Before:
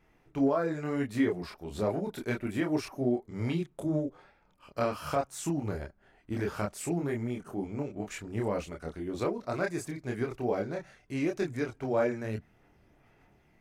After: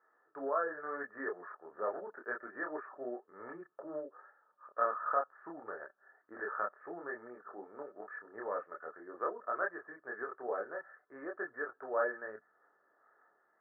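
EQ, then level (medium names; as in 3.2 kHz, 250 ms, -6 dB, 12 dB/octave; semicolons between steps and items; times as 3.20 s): high-pass 1.1 kHz 12 dB/octave; rippled Chebyshev low-pass 1.8 kHz, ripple 9 dB; +9.0 dB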